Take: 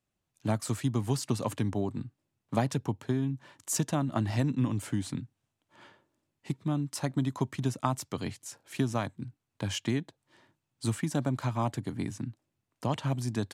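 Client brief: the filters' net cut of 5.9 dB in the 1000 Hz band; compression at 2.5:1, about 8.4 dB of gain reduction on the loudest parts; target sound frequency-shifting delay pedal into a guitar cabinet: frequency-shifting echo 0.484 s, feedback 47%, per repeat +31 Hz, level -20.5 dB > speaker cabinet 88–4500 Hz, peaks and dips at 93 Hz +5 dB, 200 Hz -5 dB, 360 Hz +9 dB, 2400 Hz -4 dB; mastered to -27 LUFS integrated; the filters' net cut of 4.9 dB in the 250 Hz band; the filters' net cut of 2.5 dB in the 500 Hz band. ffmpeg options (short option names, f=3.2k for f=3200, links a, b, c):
-filter_complex "[0:a]equalizer=f=250:t=o:g=-5.5,equalizer=f=500:t=o:g=-5.5,equalizer=f=1k:t=o:g=-5.5,acompressor=threshold=-40dB:ratio=2.5,asplit=4[a][b][c][d];[b]adelay=484,afreqshift=31,volume=-20.5dB[e];[c]adelay=968,afreqshift=62,volume=-27.1dB[f];[d]adelay=1452,afreqshift=93,volume=-33.6dB[g];[a][e][f][g]amix=inputs=4:normalize=0,highpass=88,equalizer=f=93:t=q:w=4:g=5,equalizer=f=200:t=q:w=4:g=-5,equalizer=f=360:t=q:w=4:g=9,equalizer=f=2.4k:t=q:w=4:g=-4,lowpass=f=4.5k:w=0.5412,lowpass=f=4.5k:w=1.3066,volume=16dB"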